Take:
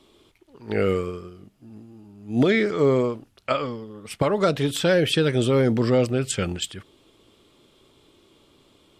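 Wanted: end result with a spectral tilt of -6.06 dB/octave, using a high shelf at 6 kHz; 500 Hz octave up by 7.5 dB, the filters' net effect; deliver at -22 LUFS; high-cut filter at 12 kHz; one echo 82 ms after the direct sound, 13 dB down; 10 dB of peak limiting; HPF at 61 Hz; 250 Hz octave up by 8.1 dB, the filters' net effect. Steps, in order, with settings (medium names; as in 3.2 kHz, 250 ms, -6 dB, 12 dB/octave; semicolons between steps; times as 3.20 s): high-pass 61 Hz; low-pass 12 kHz; peaking EQ 250 Hz +8 dB; peaking EQ 500 Hz +6.5 dB; treble shelf 6 kHz -8.5 dB; peak limiter -11.5 dBFS; delay 82 ms -13 dB; trim -1 dB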